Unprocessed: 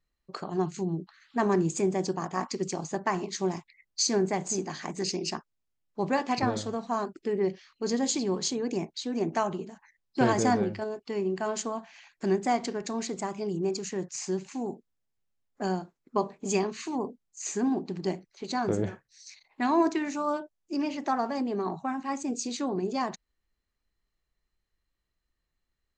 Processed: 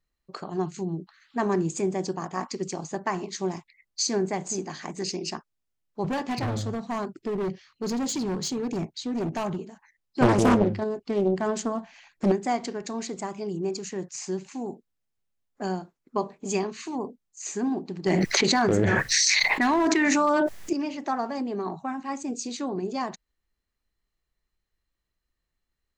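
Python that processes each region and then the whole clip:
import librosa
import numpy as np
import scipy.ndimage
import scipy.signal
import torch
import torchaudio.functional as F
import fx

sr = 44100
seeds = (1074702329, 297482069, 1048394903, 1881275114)

y = fx.chain(x, sr, fx.peak_eq(hz=110.0, db=12.0, octaves=1.5),
    fx.clip_hard(threshold_db=-25.0), at=(6.04, 9.59))
y = fx.chain(y, sr, fx.low_shelf(hz=460.0, db=9.5),
    fx.doppler_dist(depth_ms=0.98), at=(10.22, 12.32))
y = fx.chain(y, sr, fx.peak_eq(hz=1900.0, db=7.5, octaves=0.56),
    fx.clip_hard(threshold_db=-19.5),
    fx.env_flatten(amount_pct=100), at=(18.06, 20.73))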